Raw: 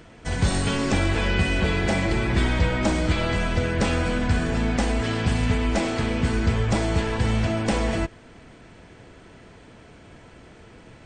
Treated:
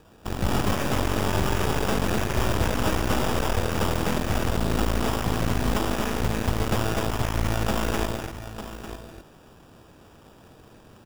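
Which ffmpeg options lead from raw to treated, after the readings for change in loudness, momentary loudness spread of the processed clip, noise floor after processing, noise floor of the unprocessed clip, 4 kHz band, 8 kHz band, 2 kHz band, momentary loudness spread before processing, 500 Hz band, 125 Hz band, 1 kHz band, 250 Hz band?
-2.5 dB, 11 LU, -52 dBFS, -48 dBFS, -1.5 dB, +1.0 dB, -4.0 dB, 2 LU, -1.0 dB, -3.5 dB, +1.5 dB, -3.0 dB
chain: -filter_complex "[0:a]crystalizer=i=3.5:c=0,asplit=2[a][b];[b]aecho=0:1:900:0.316[c];[a][c]amix=inputs=2:normalize=0,acrusher=samples=21:mix=1:aa=0.000001,asplit=2[d][e];[e]aecho=0:1:142.9|253.6:0.282|0.631[f];[d][f]amix=inputs=2:normalize=0,aeval=exprs='0.531*(cos(1*acos(clip(val(0)/0.531,-1,1)))-cos(1*PI/2))+0.0944*(cos(8*acos(clip(val(0)/0.531,-1,1)))-cos(8*PI/2))':c=same,volume=-7dB"

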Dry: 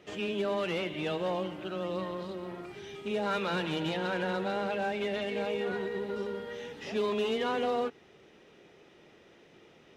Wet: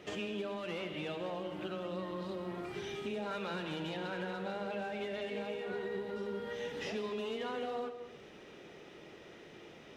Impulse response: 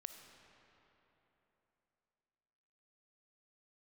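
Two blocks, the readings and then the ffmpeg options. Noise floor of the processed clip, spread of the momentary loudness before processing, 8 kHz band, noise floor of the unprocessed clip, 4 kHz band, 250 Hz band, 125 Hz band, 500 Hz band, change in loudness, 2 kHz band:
-54 dBFS, 9 LU, n/a, -59 dBFS, -6.0 dB, -5.5 dB, -5.5 dB, -6.5 dB, -6.5 dB, -6.0 dB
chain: -filter_complex "[0:a]acompressor=threshold=-42dB:ratio=5[a];[1:a]atrim=start_sample=2205,afade=t=out:st=0.34:d=0.01,atrim=end_sample=15435[b];[a][b]afir=irnorm=-1:irlink=0,volume=9.5dB"

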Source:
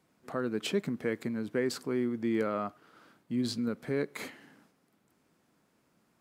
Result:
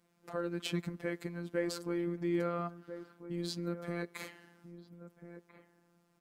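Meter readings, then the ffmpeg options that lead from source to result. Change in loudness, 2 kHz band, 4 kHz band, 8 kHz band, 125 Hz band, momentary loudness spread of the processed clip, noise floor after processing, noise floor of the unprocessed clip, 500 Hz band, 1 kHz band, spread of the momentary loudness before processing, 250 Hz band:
-4.5 dB, -4.0 dB, -3.5 dB, -3.5 dB, +0.5 dB, 20 LU, -73 dBFS, -72 dBFS, -4.5 dB, -3.0 dB, 7 LU, -5.0 dB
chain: -filter_complex "[0:a]afftfilt=real='hypot(re,im)*cos(PI*b)':imag='0':win_size=1024:overlap=0.75,asplit=2[a][b];[b]adelay=1341,volume=-11dB,highshelf=f=4k:g=-30.2[c];[a][c]amix=inputs=2:normalize=0"

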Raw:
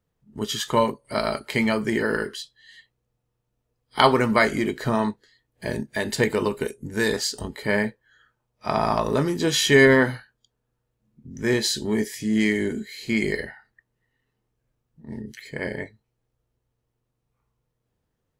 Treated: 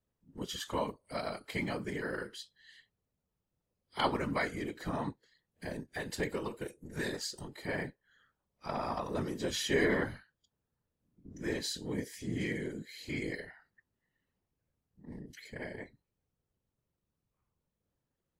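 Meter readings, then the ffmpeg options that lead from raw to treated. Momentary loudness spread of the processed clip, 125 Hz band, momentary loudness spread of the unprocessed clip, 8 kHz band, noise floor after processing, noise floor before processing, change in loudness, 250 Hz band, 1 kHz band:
15 LU, -12.0 dB, 17 LU, -13.0 dB, under -85 dBFS, -78 dBFS, -14.0 dB, -14.0 dB, -13.5 dB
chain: -filter_complex "[0:a]asplit=2[a][b];[b]acompressor=threshold=-36dB:ratio=6,volume=1dB[c];[a][c]amix=inputs=2:normalize=0,afftfilt=real='hypot(re,im)*cos(2*PI*random(0))':imag='hypot(re,im)*sin(2*PI*random(1))':win_size=512:overlap=0.75,volume=-9dB"

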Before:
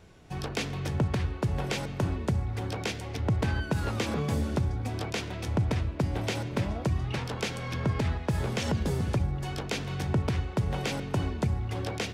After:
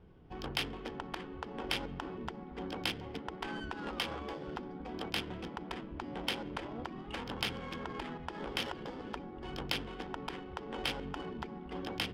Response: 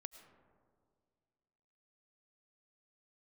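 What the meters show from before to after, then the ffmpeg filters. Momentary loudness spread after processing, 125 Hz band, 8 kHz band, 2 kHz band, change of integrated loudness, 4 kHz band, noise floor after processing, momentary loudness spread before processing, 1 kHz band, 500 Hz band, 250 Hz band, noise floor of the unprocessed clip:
7 LU, -20.0 dB, -10.5 dB, -4.5 dB, -9.0 dB, 0.0 dB, -47 dBFS, 4 LU, -4.5 dB, -8.0 dB, -9.0 dB, -38 dBFS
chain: -af "afftfilt=real='re*lt(hypot(re,im),0.126)':imag='im*lt(hypot(re,im),0.126)':win_size=1024:overlap=0.75,equalizer=f=100:t=o:w=0.33:g=-7,equalizer=f=630:t=o:w=0.33:g=-7,equalizer=f=3.15k:t=o:w=0.33:g=11,equalizer=f=5k:t=o:w=0.33:g=10,equalizer=f=10k:t=o:w=0.33:g=-10,adynamicsmooth=sensitivity=2:basefreq=1.1k,volume=-2dB"

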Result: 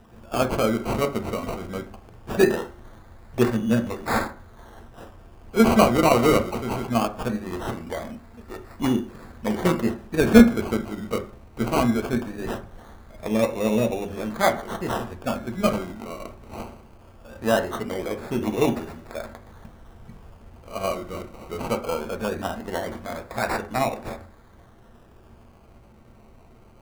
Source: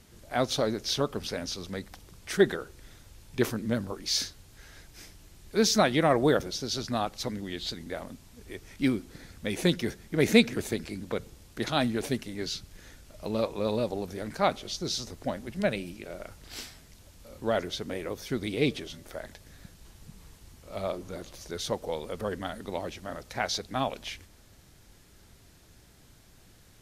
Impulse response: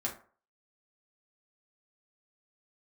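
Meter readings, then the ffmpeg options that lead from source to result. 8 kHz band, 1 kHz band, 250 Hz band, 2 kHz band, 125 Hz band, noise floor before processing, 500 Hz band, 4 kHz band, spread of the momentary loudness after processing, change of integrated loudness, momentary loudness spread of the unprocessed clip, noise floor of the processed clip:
-0.5 dB, +7.5 dB, +8.0 dB, +4.5 dB, +5.5 dB, -56 dBFS, +5.5 dB, -3.0 dB, 19 LU, +6.0 dB, 18 LU, -51 dBFS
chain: -filter_complex "[0:a]bandreject=f=50:t=h:w=6,bandreject=f=100:t=h:w=6,bandreject=f=150:t=h:w=6,bandreject=f=200:t=h:w=6,bandreject=f=250:t=h:w=6,bandreject=f=300:t=h:w=6,bandreject=f=350:t=h:w=6,bandreject=f=400:t=h:w=6,acrusher=samples=20:mix=1:aa=0.000001:lfo=1:lforange=12:lforate=0.2,asplit=2[a][b];[1:a]atrim=start_sample=2205,lowpass=2.8k[c];[b][c]afir=irnorm=-1:irlink=0,volume=-3dB[d];[a][d]amix=inputs=2:normalize=0,volume=1dB"

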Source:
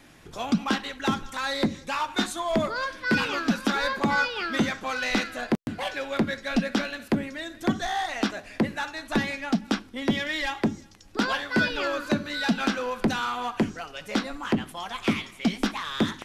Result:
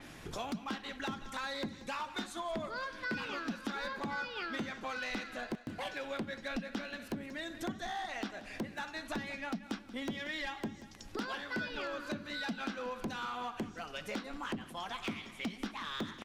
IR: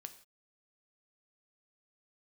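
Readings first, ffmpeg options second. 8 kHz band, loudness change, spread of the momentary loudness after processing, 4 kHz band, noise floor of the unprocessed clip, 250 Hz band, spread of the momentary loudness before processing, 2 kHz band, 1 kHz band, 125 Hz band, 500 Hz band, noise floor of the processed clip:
-12.0 dB, -12.0 dB, 4 LU, -11.5 dB, -49 dBFS, -14.0 dB, 5 LU, -11.5 dB, -11.0 dB, -14.5 dB, -11.5 dB, -52 dBFS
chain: -filter_complex "[0:a]acompressor=threshold=-41dB:ratio=4,aeval=exprs='0.0251*(abs(mod(val(0)/0.0251+3,4)-2)-1)':c=same,asplit=2[a][b];[b]aecho=0:1:182|364|546|728|910:0.15|0.0763|0.0389|0.0198|0.0101[c];[a][c]amix=inputs=2:normalize=0,adynamicequalizer=threshold=0.00112:dfrequency=6100:dqfactor=0.7:tfrequency=6100:tqfactor=0.7:attack=5:release=100:ratio=0.375:range=3:mode=cutabove:tftype=highshelf,volume=2dB"

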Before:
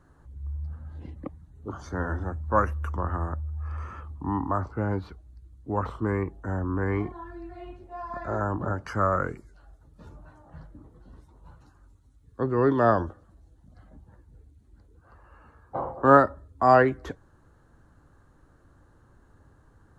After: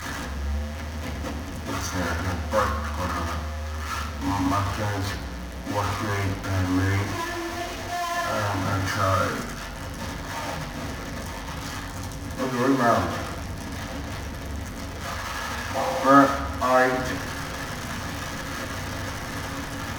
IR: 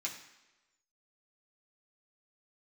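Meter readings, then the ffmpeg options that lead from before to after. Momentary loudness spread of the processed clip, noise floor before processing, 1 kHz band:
12 LU, -59 dBFS, +2.0 dB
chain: -filter_complex "[0:a]aeval=exprs='val(0)+0.5*0.0708*sgn(val(0))':c=same[a];[1:a]atrim=start_sample=2205,asetrate=36162,aresample=44100[b];[a][b]afir=irnorm=-1:irlink=0,volume=-2.5dB"

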